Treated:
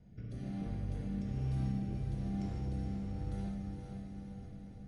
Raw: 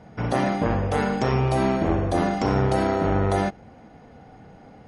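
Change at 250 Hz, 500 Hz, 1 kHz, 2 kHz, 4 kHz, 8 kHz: −14.0 dB, −27.5 dB, −29.0 dB, −28.5 dB, −23.0 dB, below −20 dB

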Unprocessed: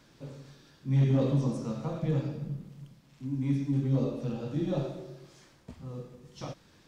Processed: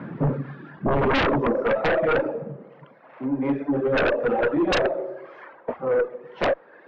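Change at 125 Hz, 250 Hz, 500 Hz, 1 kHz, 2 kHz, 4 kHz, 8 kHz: −2.5 dB, +5.5 dB, +15.0 dB, +20.0 dB, +25.5 dB, +16.0 dB, can't be measured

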